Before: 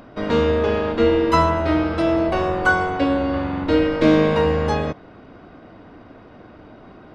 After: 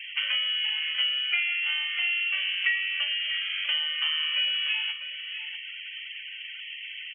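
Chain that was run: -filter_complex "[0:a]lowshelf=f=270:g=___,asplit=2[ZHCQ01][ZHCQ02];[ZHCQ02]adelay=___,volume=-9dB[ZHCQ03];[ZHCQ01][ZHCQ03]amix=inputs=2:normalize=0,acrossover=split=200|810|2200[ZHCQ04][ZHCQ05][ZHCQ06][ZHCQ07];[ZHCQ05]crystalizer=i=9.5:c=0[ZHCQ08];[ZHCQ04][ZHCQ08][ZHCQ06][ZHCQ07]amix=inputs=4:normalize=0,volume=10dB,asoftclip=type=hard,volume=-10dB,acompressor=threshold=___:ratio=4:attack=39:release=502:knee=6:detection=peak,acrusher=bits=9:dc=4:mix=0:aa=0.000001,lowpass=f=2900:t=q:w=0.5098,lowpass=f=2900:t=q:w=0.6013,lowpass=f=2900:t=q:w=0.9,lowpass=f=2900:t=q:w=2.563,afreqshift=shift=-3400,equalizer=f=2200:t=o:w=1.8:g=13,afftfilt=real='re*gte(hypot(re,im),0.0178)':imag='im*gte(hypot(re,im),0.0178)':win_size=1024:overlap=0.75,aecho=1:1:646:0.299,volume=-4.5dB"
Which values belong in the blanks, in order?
-11, 41, -36dB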